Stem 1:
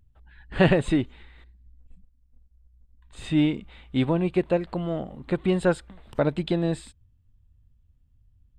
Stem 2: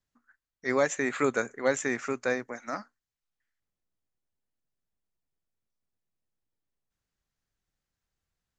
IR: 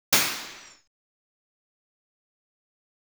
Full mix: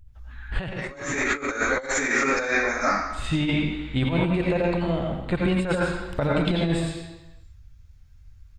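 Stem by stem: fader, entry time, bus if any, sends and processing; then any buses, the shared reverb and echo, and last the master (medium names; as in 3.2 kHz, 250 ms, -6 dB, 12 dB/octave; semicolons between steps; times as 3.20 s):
+1.5 dB, 0.00 s, send -19.5 dB, peaking EQ 290 Hz -7.5 dB 2.2 oct
-4.0 dB, 0.05 s, send -4.5 dB, bass shelf 400 Hz -10 dB; hum notches 60/120/180/240 Hz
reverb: on, RT60 1.1 s, pre-delay 77 ms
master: bass shelf 120 Hz +8 dB; compressor with a negative ratio -23 dBFS, ratio -0.5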